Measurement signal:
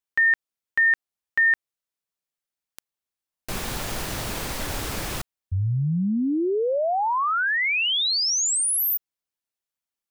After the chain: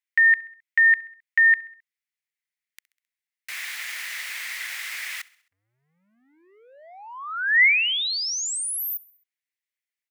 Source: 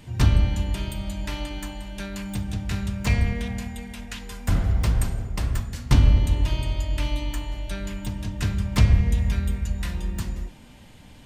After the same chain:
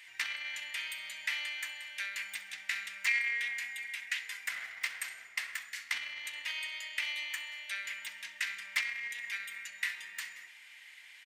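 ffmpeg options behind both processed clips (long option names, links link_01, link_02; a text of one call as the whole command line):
ffmpeg -i in.wav -af "acompressor=threshold=-23dB:ratio=2:attack=2.1:release=25:knee=1:detection=peak,highpass=frequency=2000:width_type=q:width=5.1,aecho=1:1:66|132|198|264:0.0794|0.0421|0.0223|0.0118,volume=-4.5dB" out.wav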